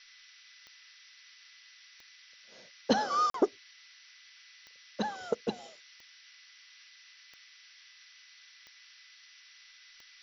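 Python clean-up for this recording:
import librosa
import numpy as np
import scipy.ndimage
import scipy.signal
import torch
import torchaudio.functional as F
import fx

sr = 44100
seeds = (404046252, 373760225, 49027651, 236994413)

y = fx.fix_declick_ar(x, sr, threshold=10.0)
y = fx.notch(y, sr, hz=2000.0, q=30.0)
y = fx.fix_interpolate(y, sr, at_s=(3.3,), length_ms=43.0)
y = fx.noise_reduce(y, sr, print_start_s=3.57, print_end_s=4.07, reduce_db=26.0)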